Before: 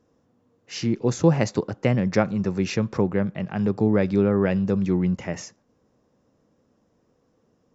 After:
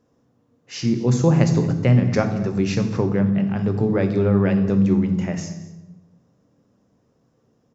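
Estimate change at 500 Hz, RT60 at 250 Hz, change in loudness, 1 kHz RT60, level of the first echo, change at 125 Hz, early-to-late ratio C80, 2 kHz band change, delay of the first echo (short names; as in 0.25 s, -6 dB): +1.0 dB, 1.4 s, +3.5 dB, 0.90 s, -19.5 dB, +6.0 dB, 11.0 dB, +0.5 dB, 0.23 s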